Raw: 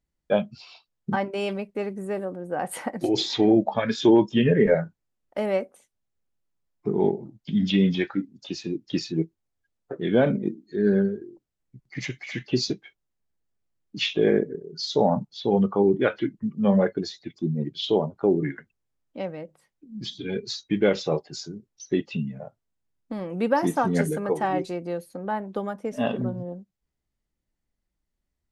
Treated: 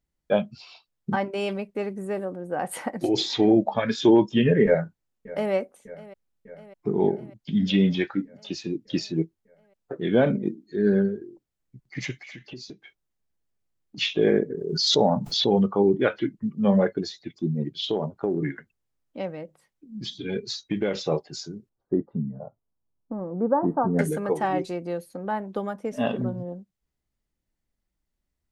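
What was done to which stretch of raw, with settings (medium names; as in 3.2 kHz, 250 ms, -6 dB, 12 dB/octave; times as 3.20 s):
4.65–5.53 s: echo throw 600 ms, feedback 70%, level -18 dB
12.15–13.98 s: compression 3:1, threshold -42 dBFS
14.50–15.71 s: swell ahead of each attack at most 37 dB/s
17.79–21.04 s: compression, threshold -20 dBFS
21.69–23.99 s: inverse Chebyshev low-pass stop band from 2.4 kHz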